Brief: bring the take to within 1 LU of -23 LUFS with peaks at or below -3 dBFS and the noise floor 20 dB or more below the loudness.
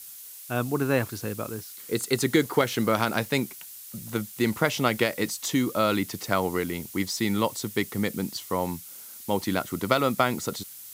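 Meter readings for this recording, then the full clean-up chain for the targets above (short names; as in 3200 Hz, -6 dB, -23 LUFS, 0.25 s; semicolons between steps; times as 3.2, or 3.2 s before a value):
noise floor -44 dBFS; noise floor target -47 dBFS; loudness -27.0 LUFS; peak -5.0 dBFS; loudness target -23.0 LUFS
-> denoiser 6 dB, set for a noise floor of -44 dBFS; gain +4 dB; limiter -3 dBFS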